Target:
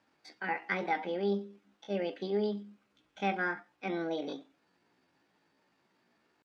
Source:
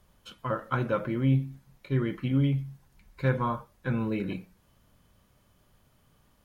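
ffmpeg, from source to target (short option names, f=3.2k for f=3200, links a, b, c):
-af "highpass=200,lowpass=3.1k,asetrate=66075,aresample=44100,atempo=0.66742,volume=-3dB"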